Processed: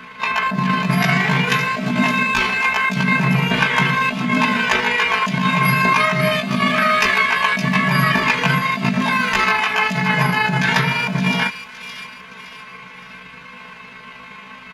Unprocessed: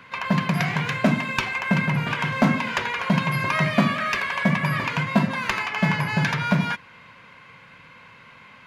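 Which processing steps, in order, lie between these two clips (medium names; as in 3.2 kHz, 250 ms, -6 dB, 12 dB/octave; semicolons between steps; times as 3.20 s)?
comb 4.6 ms, depth 95%; compressor with a negative ratio -21 dBFS, ratio -1; granular stretch 1.7×, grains 78 ms; feedback echo behind a high-pass 566 ms, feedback 42%, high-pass 3.4 kHz, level -6.5 dB; trim +5.5 dB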